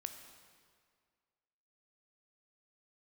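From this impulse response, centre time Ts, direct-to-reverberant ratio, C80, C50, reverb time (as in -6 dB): 29 ms, 6.5 dB, 8.5 dB, 7.5 dB, 2.0 s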